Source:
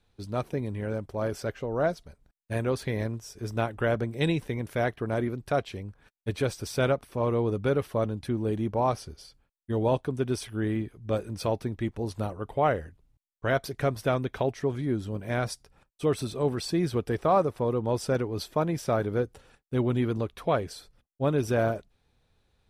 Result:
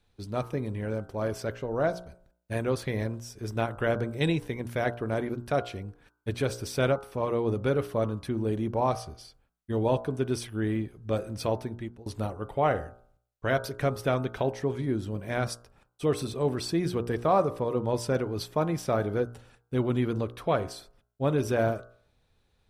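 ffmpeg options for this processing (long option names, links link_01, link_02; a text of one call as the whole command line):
ffmpeg -i in.wav -filter_complex "[0:a]asplit=2[link_01][link_02];[link_01]atrim=end=12.06,asetpts=PTS-STARTPTS,afade=type=out:start_time=11.56:duration=0.5:silence=0.0749894[link_03];[link_02]atrim=start=12.06,asetpts=PTS-STARTPTS,afade=type=in:duration=0.004:curve=hsin:silence=0.0749894[link_04];[link_03][link_04]concat=n=2:v=0:a=1,bandreject=frequency=59.29:width_type=h:width=4,bandreject=frequency=118.58:width_type=h:width=4,bandreject=frequency=177.87:width_type=h:width=4,bandreject=frequency=237.16:width_type=h:width=4,bandreject=frequency=296.45:width_type=h:width=4,bandreject=frequency=355.74:width_type=h:width=4,bandreject=frequency=415.03:width_type=h:width=4,bandreject=frequency=474.32:width_type=h:width=4,bandreject=frequency=533.61:width_type=h:width=4,bandreject=frequency=592.9:width_type=h:width=4,bandreject=frequency=652.19:width_type=h:width=4,bandreject=frequency=711.48:width_type=h:width=4,bandreject=frequency=770.77:width_type=h:width=4,bandreject=frequency=830.06:width_type=h:width=4,bandreject=frequency=889.35:width_type=h:width=4,bandreject=frequency=948.64:width_type=h:width=4,bandreject=frequency=1007.93:width_type=h:width=4,bandreject=frequency=1067.22:width_type=h:width=4,bandreject=frequency=1126.51:width_type=h:width=4,bandreject=frequency=1185.8:width_type=h:width=4,bandreject=frequency=1245.09:width_type=h:width=4,bandreject=frequency=1304.38:width_type=h:width=4,bandreject=frequency=1363.67:width_type=h:width=4,bandreject=frequency=1422.96:width_type=h:width=4,bandreject=frequency=1482.25:width_type=h:width=4,bandreject=frequency=1541.54:width_type=h:width=4,bandreject=frequency=1600.83:width_type=h:width=4" out.wav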